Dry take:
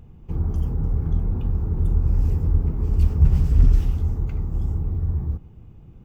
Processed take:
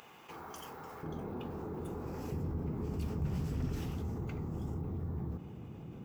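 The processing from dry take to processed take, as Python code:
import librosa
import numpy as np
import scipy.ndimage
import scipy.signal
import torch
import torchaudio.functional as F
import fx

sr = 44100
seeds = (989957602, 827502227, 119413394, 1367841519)

y = fx.highpass(x, sr, hz=fx.steps((0.0, 1100.0), (1.03, 350.0), (2.32, 170.0)), slope=12)
y = fx.env_flatten(y, sr, amount_pct=50)
y = y * librosa.db_to_amplitude(-9.0)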